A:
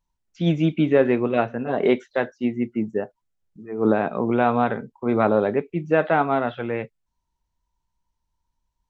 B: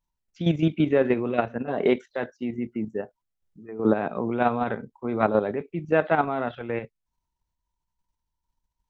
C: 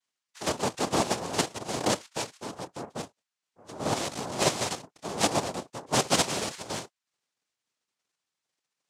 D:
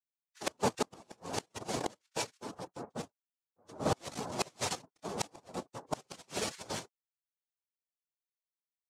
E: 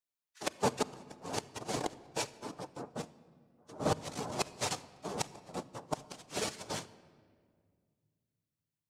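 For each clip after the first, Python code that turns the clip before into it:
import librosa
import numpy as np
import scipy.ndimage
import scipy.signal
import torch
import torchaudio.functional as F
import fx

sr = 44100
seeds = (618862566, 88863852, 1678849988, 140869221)

y1 = fx.level_steps(x, sr, step_db=9)
y2 = fx.tilt_eq(y1, sr, slope=4.0)
y2 = fx.noise_vocoder(y2, sr, seeds[0], bands=2)
y2 = F.gain(torch.from_numpy(y2), -1.5).numpy()
y3 = fx.bin_expand(y2, sr, power=1.5)
y3 = fx.gate_flip(y3, sr, shuts_db=-20.0, range_db=-31)
y3 = F.gain(torch.from_numpy(y3), 3.0).numpy()
y4 = fx.room_shoebox(y3, sr, seeds[1], volume_m3=3700.0, walls='mixed', distance_m=0.42)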